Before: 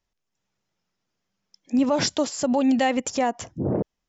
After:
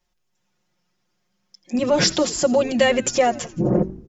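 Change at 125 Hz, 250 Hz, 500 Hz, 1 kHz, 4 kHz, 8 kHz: +6.0 dB, 0.0 dB, +7.0 dB, +2.0 dB, +6.5 dB, can't be measured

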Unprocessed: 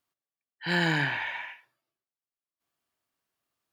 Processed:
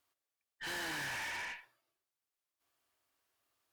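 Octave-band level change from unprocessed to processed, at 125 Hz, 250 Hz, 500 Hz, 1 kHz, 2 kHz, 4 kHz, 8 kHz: −23.0, −18.5, −13.5, −10.0, −10.5, −9.0, +4.0 decibels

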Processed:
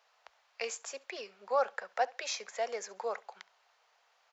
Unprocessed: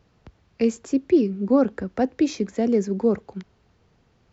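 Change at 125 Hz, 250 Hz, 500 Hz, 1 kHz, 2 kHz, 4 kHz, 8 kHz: below −40 dB, −39.0 dB, −12.5 dB, −1.0 dB, 0.0 dB, 0.0 dB, can't be measured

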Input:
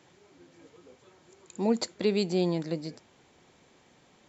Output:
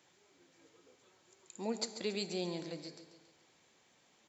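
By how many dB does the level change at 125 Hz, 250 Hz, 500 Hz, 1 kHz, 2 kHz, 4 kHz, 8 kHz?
−13.5 dB, −12.5 dB, −11.0 dB, −9.0 dB, −6.0 dB, −4.0 dB, can't be measured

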